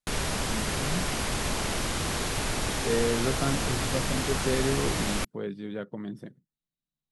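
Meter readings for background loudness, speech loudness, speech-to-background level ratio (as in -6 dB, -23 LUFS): -29.5 LUFS, -32.5 LUFS, -3.0 dB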